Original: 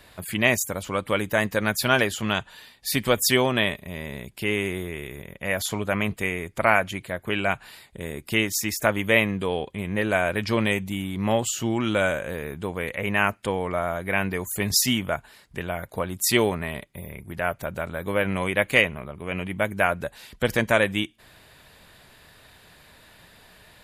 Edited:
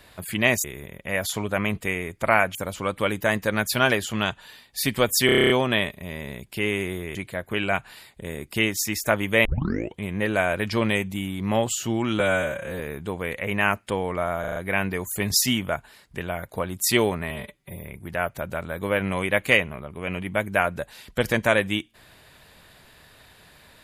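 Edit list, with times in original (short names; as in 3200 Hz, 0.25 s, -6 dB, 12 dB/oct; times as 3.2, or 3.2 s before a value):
3.35 stutter 0.03 s, 9 plays
5–6.91 move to 0.64
9.21 tape start 0.52 s
11.96–12.36 stretch 1.5×
13.96 stutter 0.04 s, 5 plays
16.7–17.01 stretch 1.5×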